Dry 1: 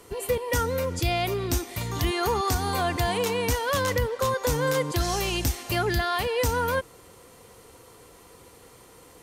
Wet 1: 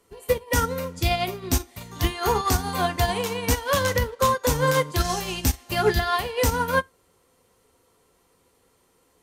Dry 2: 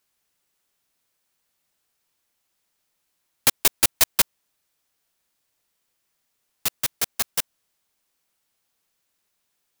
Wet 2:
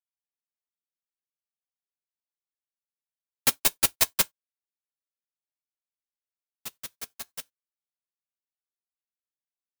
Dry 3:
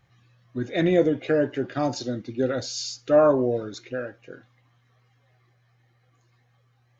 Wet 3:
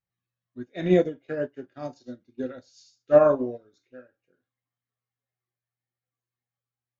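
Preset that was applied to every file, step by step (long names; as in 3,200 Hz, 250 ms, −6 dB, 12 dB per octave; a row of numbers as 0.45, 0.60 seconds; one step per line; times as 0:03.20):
reverb whose tail is shaped and stops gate 110 ms falling, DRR 6.5 dB
expander for the loud parts 2.5 to 1, over −34 dBFS
loudness normalisation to −24 LKFS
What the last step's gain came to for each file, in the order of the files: +6.5, −3.0, +3.0 decibels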